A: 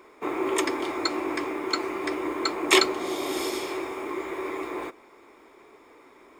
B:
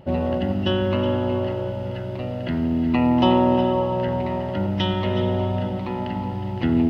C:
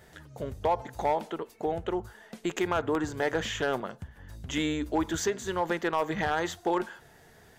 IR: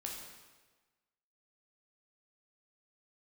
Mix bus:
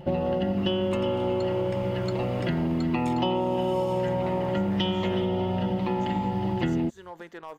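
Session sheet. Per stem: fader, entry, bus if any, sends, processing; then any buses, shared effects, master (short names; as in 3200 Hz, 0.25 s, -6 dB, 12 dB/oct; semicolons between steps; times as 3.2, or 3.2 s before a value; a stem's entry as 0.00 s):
-6.5 dB, 0.35 s, no send, compressor, threshold -29 dBFS, peak gain reduction 14.5 dB
+2.0 dB, 0.00 s, no send, comb 5.7 ms, depth 56%
-13.0 dB, 1.50 s, no send, dry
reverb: off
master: compressor, threshold -23 dBFS, peak gain reduction 12 dB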